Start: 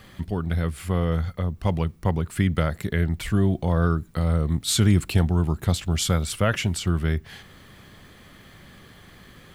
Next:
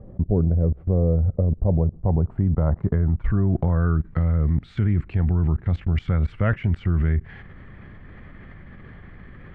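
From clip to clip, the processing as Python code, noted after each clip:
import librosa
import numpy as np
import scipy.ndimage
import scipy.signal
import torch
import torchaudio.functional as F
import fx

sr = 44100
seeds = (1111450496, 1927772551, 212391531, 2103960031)

y = fx.tilt_eq(x, sr, slope=-3.0)
y = fx.level_steps(y, sr, step_db=23)
y = fx.filter_sweep_lowpass(y, sr, from_hz=560.0, to_hz=2000.0, start_s=1.56, end_s=4.27, q=2.3)
y = y * 10.0 ** (4.0 / 20.0)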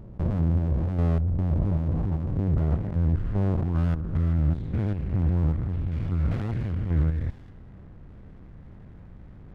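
y = fx.spec_steps(x, sr, hold_ms=200)
y = fx.env_lowpass(y, sr, base_hz=870.0, full_db=-16.0)
y = fx.running_max(y, sr, window=65)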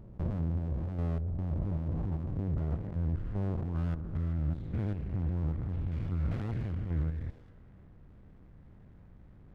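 y = fx.echo_stepped(x, sr, ms=144, hz=380.0, octaves=0.7, feedback_pct=70, wet_db=-12.0)
y = fx.rider(y, sr, range_db=10, speed_s=0.5)
y = y * 10.0 ** (-8.0 / 20.0)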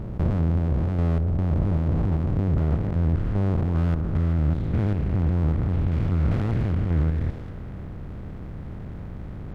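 y = fx.bin_compress(x, sr, power=0.6)
y = y * 10.0 ** (8.0 / 20.0)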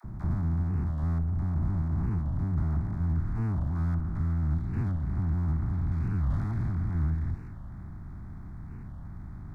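y = fx.fixed_phaser(x, sr, hz=1200.0, stages=4)
y = fx.dispersion(y, sr, late='lows', ms=46.0, hz=490.0)
y = fx.record_warp(y, sr, rpm=45.0, depth_cents=250.0)
y = y * 10.0 ** (-5.0 / 20.0)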